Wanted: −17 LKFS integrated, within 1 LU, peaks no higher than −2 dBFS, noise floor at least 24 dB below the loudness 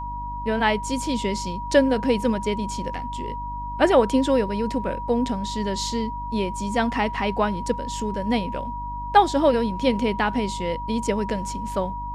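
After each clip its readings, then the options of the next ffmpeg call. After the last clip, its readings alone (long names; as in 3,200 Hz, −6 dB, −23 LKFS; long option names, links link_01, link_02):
mains hum 50 Hz; hum harmonics up to 300 Hz; level of the hum −32 dBFS; interfering tone 960 Hz; level of the tone −30 dBFS; integrated loudness −24.0 LKFS; sample peak −4.0 dBFS; target loudness −17.0 LKFS
→ -af "bandreject=frequency=50:width_type=h:width=4,bandreject=frequency=100:width_type=h:width=4,bandreject=frequency=150:width_type=h:width=4,bandreject=frequency=200:width_type=h:width=4,bandreject=frequency=250:width_type=h:width=4,bandreject=frequency=300:width_type=h:width=4"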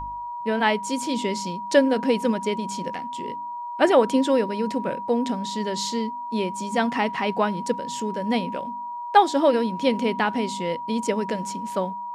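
mains hum none found; interfering tone 960 Hz; level of the tone −30 dBFS
→ -af "bandreject=frequency=960:width=30"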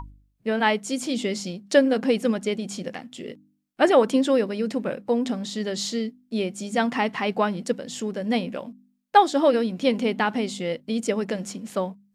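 interfering tone none found; integrated loudness −24.5 LKFS; sample peak −4.5 dBFS; target loudness −17.0 LKFS
→ -af "volume=7.5dB,alimiter=limit=-2dB:level=0:latency=1"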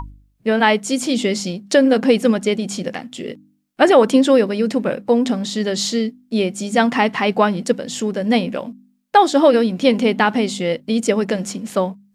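integrated loudness −17.5 LKFS; sample peak −2.0 dBFS; background noise floor −60 dBFS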